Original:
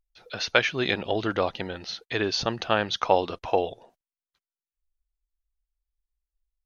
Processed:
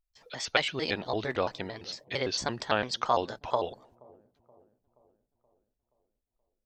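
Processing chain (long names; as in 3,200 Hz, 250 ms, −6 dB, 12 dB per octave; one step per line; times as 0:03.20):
pitch shifter gated in a rhythm +4 semitones, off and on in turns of 113 ms
delay with a low-pass on its return 476 ms, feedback 51%, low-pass 460 Hz, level −20.5 dB
level −4 dB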